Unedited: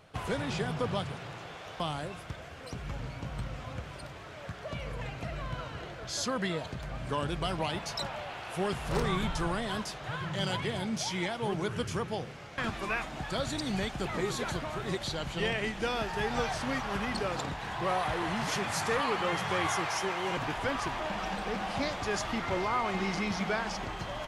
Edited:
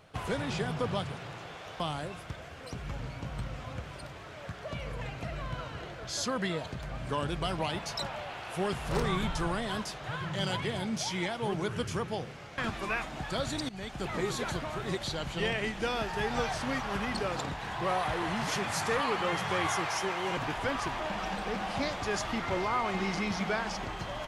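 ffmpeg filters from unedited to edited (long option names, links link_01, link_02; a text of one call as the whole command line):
ffmpeg -i in.wav -filter_complex "[0:a]asplit=2[link_01][link_02];[link_01]atrim=end=13.69,asetpts=PTS-STARTPTS,afade=type=out:start_time=13.686:duration=0.004:curve=hsin:silence=0.112202[link_03];[link_02]atrim=start=13.69,asetpts=PTS-STARTPTS,afade=type=in:duration=0.56:curve=qsin:silence=0.112202[link_04];[link_03][link_04]concat=n=2:v=0:a=1" out.wav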